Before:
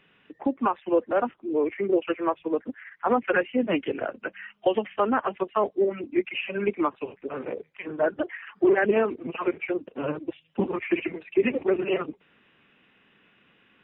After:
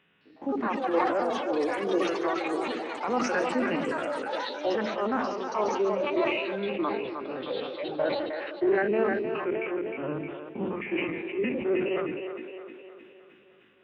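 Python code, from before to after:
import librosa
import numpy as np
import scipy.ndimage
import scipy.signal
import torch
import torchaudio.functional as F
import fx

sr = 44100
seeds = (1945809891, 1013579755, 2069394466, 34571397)

p1 = fx.spec_steps(x, sr, hold_ms=50)
p2 = scipy.signal.sosfilt(scipy.signal.butter(2, 48.0, 'highpass', fs=sr, output='sos'), p1)
p3 = p2 + fx.echo_split(p2, sr, split_hz=300.0, low_ms=86, high_ms=309, feedback_pct=52, wet_db=-7, dry=0)
p4 = fx.echo_pitch(p3, sr, ms=211, semitones=7, count=3, db_per_echo=-6.0)
p5 = fx.sustainer(p4, sr, db_per_s=34.0)
y = p5 * librosa.db_to_amplitude(-4.0)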